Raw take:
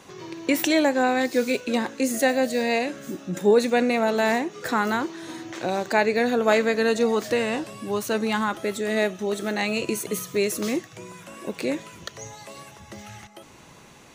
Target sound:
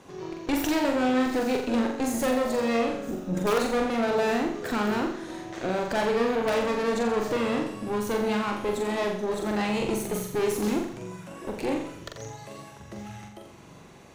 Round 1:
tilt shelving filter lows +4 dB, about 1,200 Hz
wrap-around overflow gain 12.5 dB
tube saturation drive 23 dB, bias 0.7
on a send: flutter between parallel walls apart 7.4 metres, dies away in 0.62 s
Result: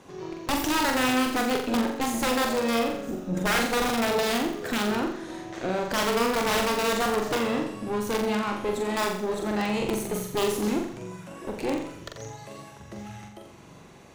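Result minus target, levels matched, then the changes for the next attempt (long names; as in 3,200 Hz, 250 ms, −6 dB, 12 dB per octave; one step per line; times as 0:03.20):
wrap-around overflow: distortion +15 dB
change: wrap-around overflow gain 6.5 dB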